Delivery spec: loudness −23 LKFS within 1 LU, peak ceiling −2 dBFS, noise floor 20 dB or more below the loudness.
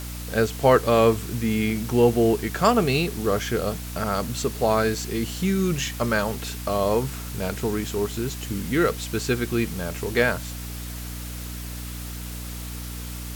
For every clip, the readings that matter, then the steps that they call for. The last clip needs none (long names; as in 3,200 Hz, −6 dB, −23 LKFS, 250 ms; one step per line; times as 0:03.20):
mains hum 60 Hz; hum harmonics up to 300 Hz; level of the hum −32 dBFS; background noise floor −34 dBFS; target noise floor −45 dBFS; integrated loudness −24.5 LKFS; sample peak −5.5 dBFS; target loudness −23.0 LKFS
→ hum removal 60 Hz, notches 5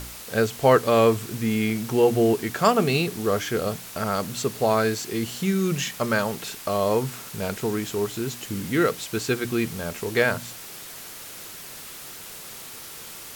mains hum none found; background noise floor −40 dBFS; target noise floor −44 dBFS
→ broadband denoise 6 dB, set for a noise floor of −40 dBFS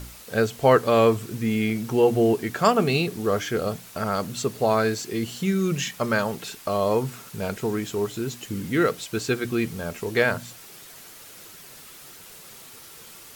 background noise floor −45 dBFS; integrated loudness −24.0 LKFS; sample peak −5.0 dBFS; target loudness −23.0 LKFS
→ level +1 dB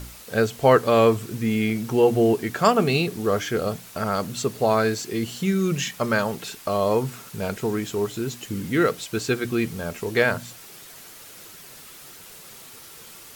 integrated loudness −23.0 LKFS; sample peak −4.0 dBFS; background noise floor −44 dBFS